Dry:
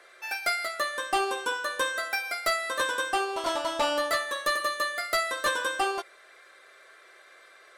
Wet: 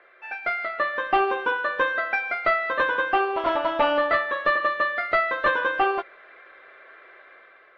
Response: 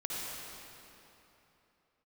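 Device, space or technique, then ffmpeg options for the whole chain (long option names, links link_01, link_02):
action camera in a waterproof case: -af "lowpass=frequency=2600:width=0.5412,lowpass=frequency=2600:width=1.3066,dynaudnorm=framelen=180:gausssize=7:maxgain=6dB" -ar 48000 -c:a aac -b:a 48k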